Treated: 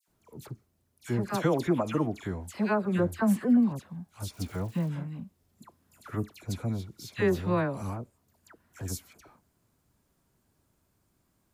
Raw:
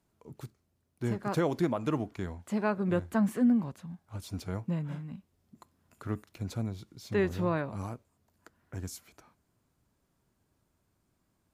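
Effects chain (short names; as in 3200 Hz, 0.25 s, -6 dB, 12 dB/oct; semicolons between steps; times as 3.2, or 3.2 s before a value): 4.32–4.87 crackle 370/s -46 dBFS; high shelf 8000 Hz +5.5 dB; dispersion lows, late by 78 ms, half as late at 1700 Hz; gain +2.5 dB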